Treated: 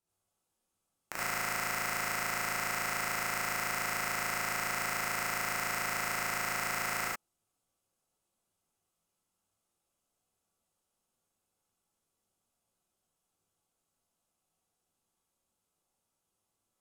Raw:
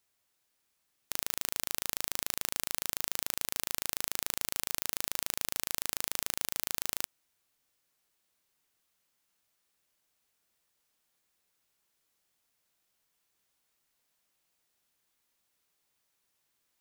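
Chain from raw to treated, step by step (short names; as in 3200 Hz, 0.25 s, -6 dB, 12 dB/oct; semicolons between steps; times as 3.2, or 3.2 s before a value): bell 1900 Hz -12.5 dB 0.7 oct; overloaded stage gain 23 dB; LPF 9300 Hz 12 dB/oct; sample leveller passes 5; bell 4400 Hz -10 dB 1.6 oct; non-linear reverb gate 0.12 s rising, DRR -7 dB; gain +4.5 dB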